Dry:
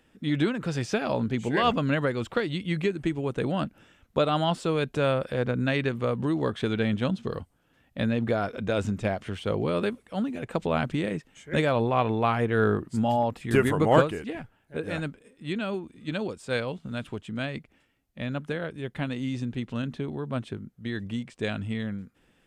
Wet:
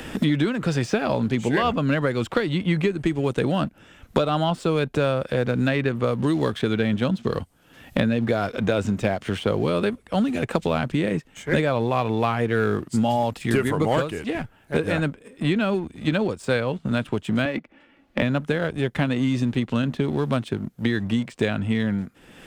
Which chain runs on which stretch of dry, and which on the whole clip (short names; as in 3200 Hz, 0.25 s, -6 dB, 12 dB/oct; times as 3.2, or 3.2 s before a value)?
17.45–18.22 three-band isolator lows -16 dB, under 170 Hz, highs -16 dB, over 4300 Hz + comb 3.5 ms, depth 44%
whole clip: sample leveller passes 1; three-band squash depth 100%